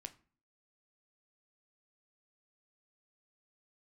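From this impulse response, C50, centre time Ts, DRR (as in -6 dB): 18.0 dB, 5 ms, 8.5 dB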